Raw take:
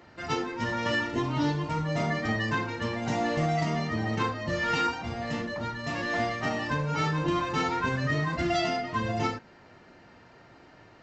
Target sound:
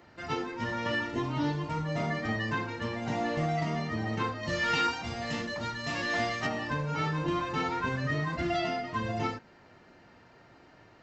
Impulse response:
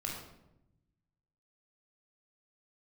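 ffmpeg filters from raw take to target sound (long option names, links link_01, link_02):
-filter_complex "[0:a]acrossover=split=4500[link_01][link_02];[link_02]acompressor=threshold=-51dB:ratio=4:attack=1:release=60[link_03];[link_01][link_03]amix=inputs=2:normalize=0,asettb=1/sr,asplit=3[link_04][link_05][link_06];[link_04]atrim=end=4.434[link_07];[link_05]atrim=start=4.43:end=6.47,asetpts=PTS-STARTPTS,afade=type=in:duration=0.004:curve=qsin,afade=type=out:start_time=2.036:duration=0.004:curve=qsin,highshelf=frequency=2700:gain=10.5[link_08];[link_06]atrim=start=6.466[link_09];[link_07][link_08]acrossfade=duration=0.004:curve1=hsin:curve2=qsin[link_10];[link_10][link_09]acrossfade=duration=0.004:curve1=qsin:curve2=hsin,volume=-3dB"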